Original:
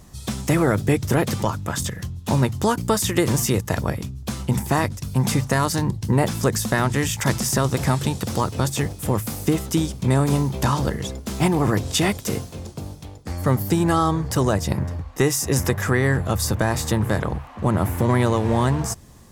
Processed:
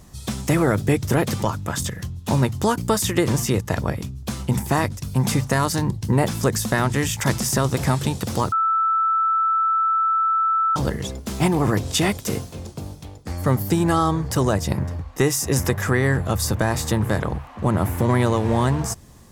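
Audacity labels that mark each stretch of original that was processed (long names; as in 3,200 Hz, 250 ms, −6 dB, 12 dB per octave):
3.120000	3.980000	high-shelf EQ 7,400 Hz −6 dB
8.520000	10.760000	beep over 1,320 Hz −16.5 dBFS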